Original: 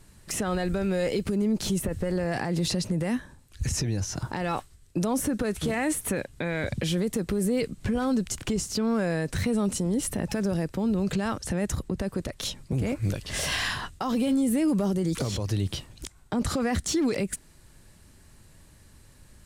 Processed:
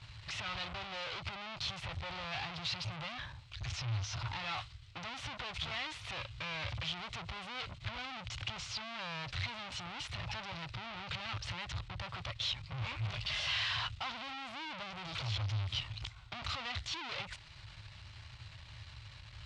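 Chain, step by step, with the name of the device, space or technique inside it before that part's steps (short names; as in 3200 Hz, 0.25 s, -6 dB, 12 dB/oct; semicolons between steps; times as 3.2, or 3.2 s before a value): 13.01–13.44 comb 4.8 ms, depth 54%; scooped metal amplifier (tube stage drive 44 dB, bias 0.55; speaker cabinet 77–3900 Hz, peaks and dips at 110 Hz +9 dB, 200 Hz -9 dB, 310 Hz +6 dB, 450 Hz -8 dB, 1700 Hz -7 dB; passive tone stack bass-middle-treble 10-0-10); gain +17.5 dB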